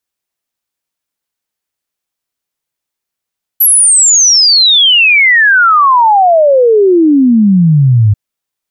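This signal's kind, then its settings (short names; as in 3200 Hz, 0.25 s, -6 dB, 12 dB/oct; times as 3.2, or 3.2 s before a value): log sweep 12000 Hz -> 100 Hz 4.54 s -3.5 dBFS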